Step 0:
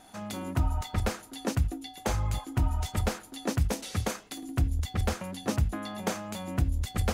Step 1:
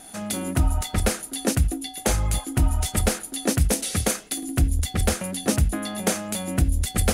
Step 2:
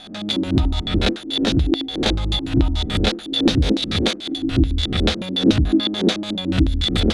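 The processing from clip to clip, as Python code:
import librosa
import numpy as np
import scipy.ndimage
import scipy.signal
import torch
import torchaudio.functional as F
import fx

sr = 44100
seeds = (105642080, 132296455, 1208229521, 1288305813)

y1 = fx.graphic_eq_15(x, sr, hz=(100, 1000, 10000), db=(-6, -7, 11))
y1 = y1 * 10.0 ** (8.0 / 20.0)
y2 = fx.spec_swells(y1, sr, rise_s=0.43)
y2 = fx.filter_lfo_lowpass(y2, sr, shape='square', hz=6.9, low_hz=320.0, high_hz=3700.0, q=6.3)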